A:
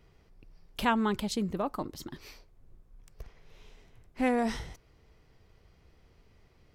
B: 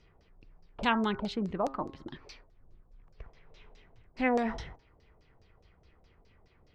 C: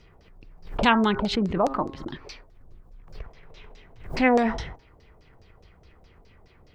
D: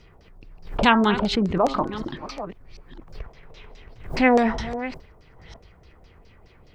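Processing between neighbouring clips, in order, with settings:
de-hum 135 Hz, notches 14; LFO low-pass saw down 4.8 Hz 550–6200 Hz; trim -2 dB
swell ahead of each attack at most 110 dB/s; trim +8 dB
chunks repeated in reverse 506 ms, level -13 dB; trim +2.5 dB

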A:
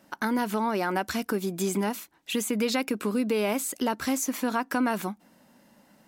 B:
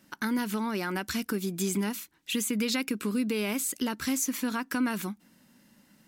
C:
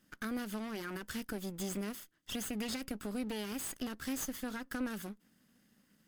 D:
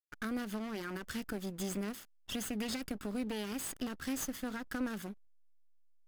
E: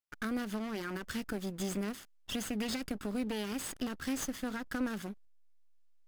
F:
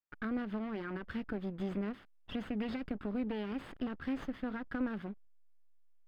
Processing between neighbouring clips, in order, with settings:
peaking EQ 690 Hz -12 dB 1.5 oct; trim +1 dB
comb filter that takes the minimum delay 0.62 ms; trim -8 dB
hysteresis with a dead band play -48.5 dBFS; trim +1 dB
median filter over 3 samples; trim +2 dB
distance through air 430 m

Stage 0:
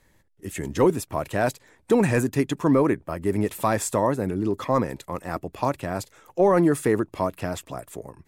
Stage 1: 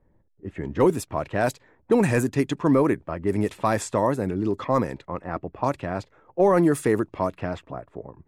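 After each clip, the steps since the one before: level-controlled noise filter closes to 720 Hz, open at -18 dBFS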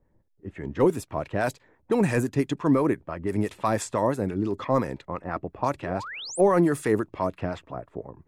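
in parallel at +1.5 dB: gain riding within 5 dB 2 s; on the sum: harmonic tremolo 5.9 Hz, depth 50%, crossover 760 Hz; painted sound rise, 5.82–6.41 s, 290–11000 Hz -30 dBFS; trim -7 dB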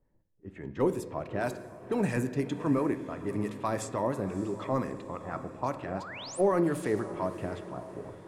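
echo that smears into a reverb 613 ms, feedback 49%, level -14 dB; on a send at -10.5 dB: reverberation RT60 1.4 s, pre-delay 3 ms; on the sum: trim -6.5 dB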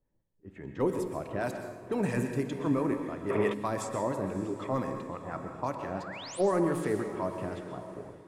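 plate-style reverb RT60 0.67 s, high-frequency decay 0.95×, pre-delay 110 ms, DRR 7 dB; time-frequency box 3.30–3.53 s, 340–3700 Hz +12 dB; level rider gain up to 5 dB; trim -6.5 dB

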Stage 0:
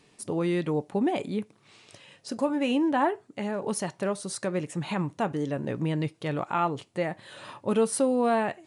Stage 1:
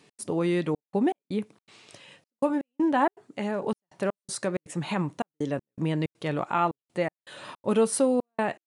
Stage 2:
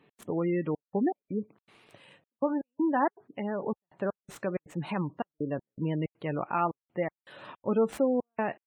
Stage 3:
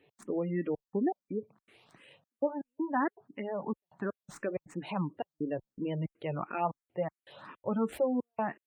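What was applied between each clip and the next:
high-pass 120 Hz; trance gate "x.xxxxxx..xx..xx" 161 bpm -60 dB; trim +1.5 dB
median filter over 9 samples; spectral gate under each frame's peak -25 dB strong; trim -3 dB
barber-pole phaser +2.9 Hz

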